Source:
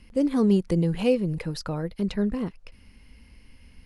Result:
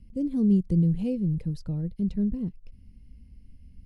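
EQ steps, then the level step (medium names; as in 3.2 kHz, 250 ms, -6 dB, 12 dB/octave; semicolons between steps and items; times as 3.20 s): FFT filter 170 Hz 0 dB, 1.2 kHz -27 dB, 3.6 kHz -19 dB, 8.3 kHz -17 dB; +2.5 dB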